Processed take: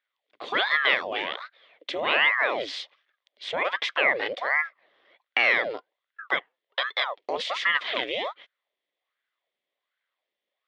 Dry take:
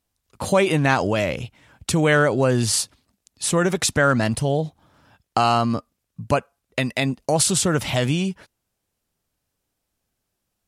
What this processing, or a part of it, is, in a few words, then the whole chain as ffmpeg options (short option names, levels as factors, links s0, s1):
voice changer toy: -af "aeval=exprs='val(0)*sin(2*PI*860*n/s+860*0.8/1.3*sin(2*PI*1.3*n/s))':c=same,highpass=530,equalizer=f=560:t=q:w=4:g=5,equalizer=f=880:t=q:w=4:g=-6,equalizer=f=1400:t=q:w=4:g=-6,equalizer=f=2000:t=q:w=4:g=9,equalizer=f=3400:t=q:w=4:g=9,lowpass=f=3800:w=0.5412,lowpass=f=3800:w=1.3066,volume=0.708"